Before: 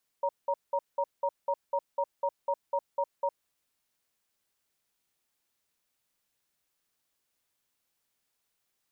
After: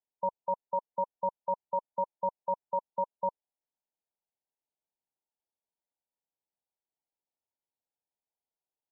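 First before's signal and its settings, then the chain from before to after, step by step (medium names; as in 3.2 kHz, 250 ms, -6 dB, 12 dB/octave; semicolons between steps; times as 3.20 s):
cadence 562 Hz, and 939 Hz, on 0.06 s, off 0.19 s, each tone -28 dBFS 3.16 s
bass shelf 420 Hz -11 dB; waveshaping leveller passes 3; brick-wall FIR low-pass 1 kHz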